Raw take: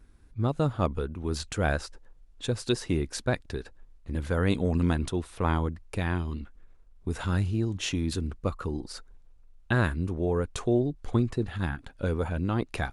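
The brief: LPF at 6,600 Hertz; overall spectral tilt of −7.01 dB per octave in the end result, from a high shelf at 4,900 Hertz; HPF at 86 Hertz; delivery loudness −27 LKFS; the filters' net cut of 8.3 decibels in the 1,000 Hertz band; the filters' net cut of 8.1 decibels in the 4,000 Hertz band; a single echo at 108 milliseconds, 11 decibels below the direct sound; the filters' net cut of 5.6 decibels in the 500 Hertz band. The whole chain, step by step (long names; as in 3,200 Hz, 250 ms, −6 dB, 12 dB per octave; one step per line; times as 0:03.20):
high-pass filter 86 Hz
low-pass filter 6,600 Hz
parametric band 500 Hz −5.5 dB
parametric band 1,000 Hz −9 dB
parametric band 4,000 Hz −6 dB
high-shelf EQ 4,900 Hz −6.5 dB
single-tap delay 108 ms −11 dB
level +5.5 dB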